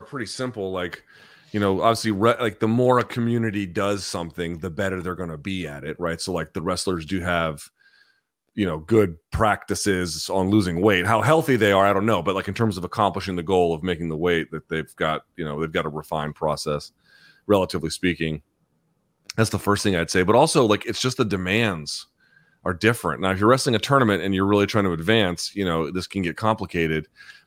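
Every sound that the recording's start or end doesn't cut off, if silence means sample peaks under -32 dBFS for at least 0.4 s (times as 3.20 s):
1.54–7.64 s
8.57–16.86 s
17.49–18.37 s
19.30–22.02 s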